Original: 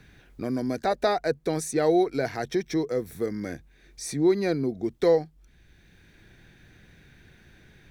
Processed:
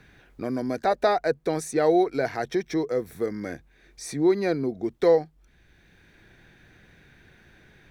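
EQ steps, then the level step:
low-shelf EQ 420 Hz −9 dB
high-shelf EQ 2,100 Hz −9 dB
+6.0 dB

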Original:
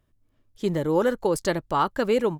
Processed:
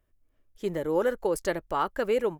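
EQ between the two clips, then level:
octave-band graphic EQ 125/250/1,000/4,000/8,000 Hz −12/−6/−5/−8/−4 dB
0.0 dB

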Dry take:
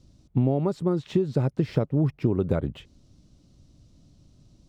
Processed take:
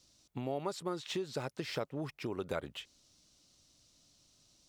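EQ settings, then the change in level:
bass and treble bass −5 dB, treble +4 dB
tilt shelving filter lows −9.5 dB, about 630 Hz
−7.5 dB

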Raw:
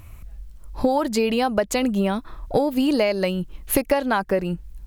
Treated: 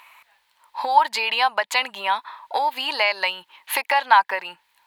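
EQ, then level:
high-pass with resonance 930 Hz, resonance Q 8.9
flat-topped bell 2,700 Hz +11.5 dB
−4.0 dB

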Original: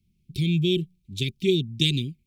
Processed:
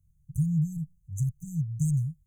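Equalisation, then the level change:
linear-phase brick-wall band-stop 170–6,000 Hz
low-shelf EQ 110 Hz +6.5 dB
0.0 dB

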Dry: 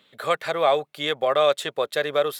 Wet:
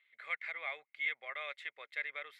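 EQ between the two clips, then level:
resonant band-pass 2,100 Hz, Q 13
+2.0 dB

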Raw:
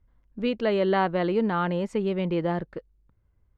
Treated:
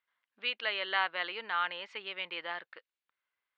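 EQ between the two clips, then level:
high-pass filter 1,500 Hz 12 dB per octave
low-pass filter 3,700 Hz 24 dB per octave
high-shelf EQ 2,100 Hz +8.5 dB
0.0 dB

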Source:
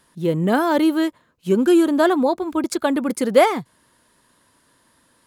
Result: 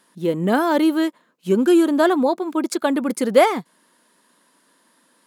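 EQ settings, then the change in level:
linear-phase brick-wall high-pass 160 Hz
0.0 dB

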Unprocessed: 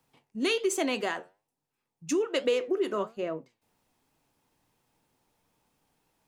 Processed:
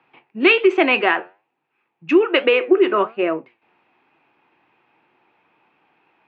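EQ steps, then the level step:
loudspeaker in its box 150–3,300 Hz, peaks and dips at 350 Hz +10 dB, 780 Hz +4 dB, 2,500 Hz +10 dB
parametric band 1,400 Hz +10.5 dB 1.9 octaves
+5.0 dB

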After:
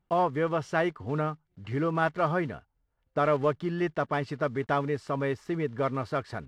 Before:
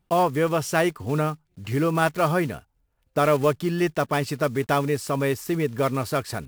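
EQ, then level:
head-to-tape spacing loss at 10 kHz 21 dB
parametric band 1,800 Hz +5 dB 3 octaves
notch filter 2,500 Hz, Q 11
−6.0 dB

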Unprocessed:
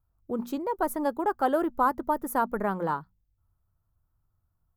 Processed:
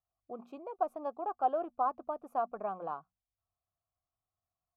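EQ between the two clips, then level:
formant filter a
low-shelf EQ 90 Hz +8 dB
low-shelf EQ 320 Hz +7.5 dB
0.0 dB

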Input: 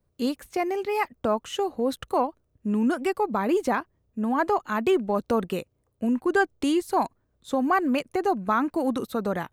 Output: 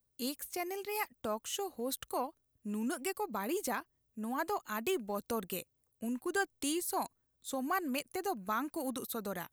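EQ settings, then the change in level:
first-order pre-emphasis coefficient 0.8
high-shelf EQ 8,900 Hz +5.5 dB
+1.0 dB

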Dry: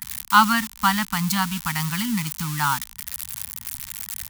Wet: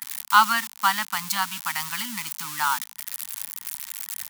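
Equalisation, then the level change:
high-pass filter 470 Hz 12 dB per octave
−1.0 dB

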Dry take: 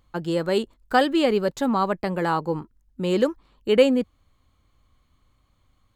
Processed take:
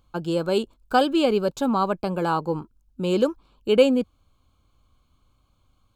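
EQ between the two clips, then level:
Butterworth band-reject 1,900 Hz, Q 3.1
0.0 dB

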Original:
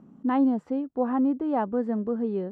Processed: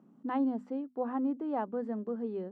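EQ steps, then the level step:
high-pass filter 170 Hz
mains-hum notches 50/100/150/200/250 Hz
−7.0 dB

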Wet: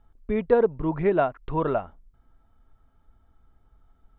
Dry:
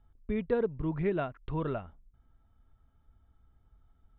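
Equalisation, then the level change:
dynamic equaliser 790 Hz, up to +6 dB, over −43 dBFS, Q 1.2
parametric band 83 Hz −8.5 dB 2.8 octaves
high-shelf EQ 2,500 Hz −8 dB
+9.0 dB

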